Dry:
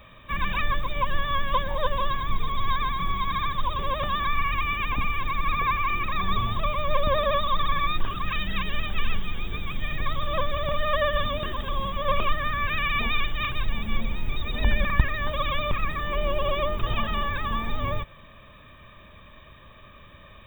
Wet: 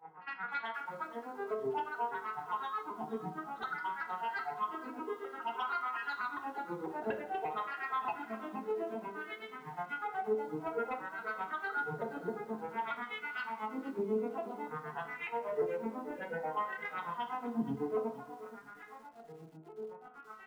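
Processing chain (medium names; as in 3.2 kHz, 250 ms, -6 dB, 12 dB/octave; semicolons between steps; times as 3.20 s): vocoder on a broken chord minor triad, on G3, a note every 245 ms; hum notches 50/100/150/200/250/300/350/400/450 Hz; compression 16:1, threshold -32 dBFS, peak gain reduction 14.5 dB; wah-wah 0.55 Hz 390–1600 Hz, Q 4.2; granulator 120 ms, grains 8.1 per s, pitch spread up and down by 7 st; sine folder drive 12 dB, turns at -28.5 dBFS; distance through air 500 m; comb of notches 580 Hz; reverse echo 62 ms -19.5 dB; reverberation RT60 0.60 s, pre-delay 4 ms, DRR 4 dB; bit-crushed delay 473 ms, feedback 35%, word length 9-bit, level -14.5 dB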